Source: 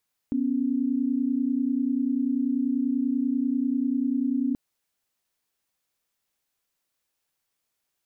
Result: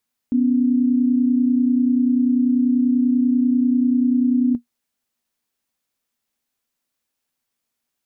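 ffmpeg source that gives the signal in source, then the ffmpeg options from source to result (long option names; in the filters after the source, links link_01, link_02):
-f lavfi -i "aevalsrc='0.0562*(sin(2*PI*246.94*t)+sin(2*PI*277.18*t))':duration=4.23:sample_rate=44100"
-af "equalizer=frequency=240:width_type=o:width=0.25:gain=11.5"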